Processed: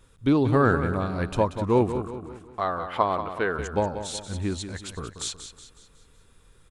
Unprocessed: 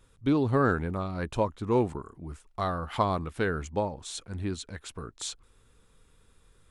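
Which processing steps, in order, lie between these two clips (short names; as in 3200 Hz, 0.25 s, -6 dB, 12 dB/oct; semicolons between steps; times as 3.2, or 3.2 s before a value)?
2.11–3.59 tone controls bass -12 dB, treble -12 dB; on a send: feedback echo 0.184 s, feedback 45%, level -10 dB; on the sum: gain +4 dB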